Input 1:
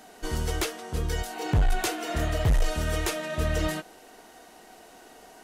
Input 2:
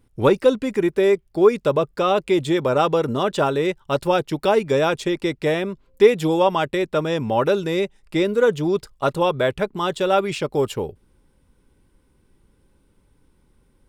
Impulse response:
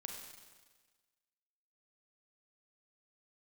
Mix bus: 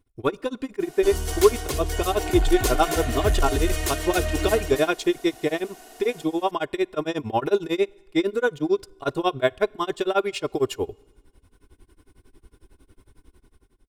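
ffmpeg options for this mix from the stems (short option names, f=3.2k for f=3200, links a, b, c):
-filter_complex "[0:a]highshelf=f=4.6k:g=8.5,asoftclip=type=tanh:threshold=-18dB,adelay=800,volume=-1.5dB,asplit=2[a][b];[b]volume=-4.5dB[c];[1:a]dynaudnorm=f=180:g=7:m=14dB,tremolo=f=11:d=0.98,volume=-6.5dB,asplit=2[d][e];[e]volume=-21dB[f];[2:a]atrim=start_sample=2205[g];[f][g]afir=irnorm=-1:irlink=0[h];[c]aecho=0:1:274:1[i];[a][d][h][i]amix=inputs=4:normalize=0,aecho=1:1:2.8:0.59"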